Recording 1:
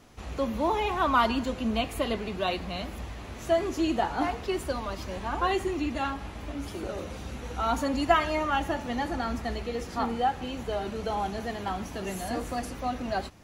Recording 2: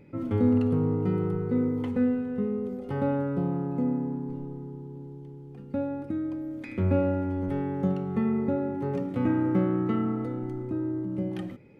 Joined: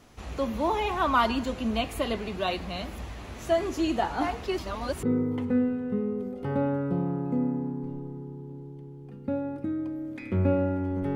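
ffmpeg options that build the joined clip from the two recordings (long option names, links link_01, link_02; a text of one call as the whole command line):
ffmpeg -i cue0.wav -i cue1.wav -filter_complex "[0:a]apad=whole_dur=11.15,atrim=end=11.15,asplit=2[link_01][link_02];[link_01]atrim=end=4.582[link_03];[link_02]atrim=start=4.578:end=5.032,asetpts=PTS-STARTPTS,areverse[link_04];[1:a]atrim=start=1.488:end=7.61[link_05];[link_03][link_04]acrossfade=duration=0.004:curve1=hsin:curve2=hsin[link_06];[link_06][link_05]acrossfade=duration=0.004:curve1=hsin:curve2=hsin" out.wav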